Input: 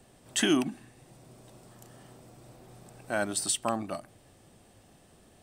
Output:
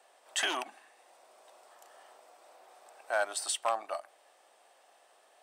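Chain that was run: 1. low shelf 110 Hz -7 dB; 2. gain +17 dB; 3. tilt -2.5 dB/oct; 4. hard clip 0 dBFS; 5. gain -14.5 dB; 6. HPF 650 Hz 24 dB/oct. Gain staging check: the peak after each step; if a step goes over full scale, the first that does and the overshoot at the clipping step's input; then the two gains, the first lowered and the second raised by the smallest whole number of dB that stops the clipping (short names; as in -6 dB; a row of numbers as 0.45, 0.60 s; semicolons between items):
-14.5, +2.5, +4.5, 0.0, -14.5, -15.5 dBFS; step 2, 4.5 dB; step 2 +12 dB, step 5 -9.5 dB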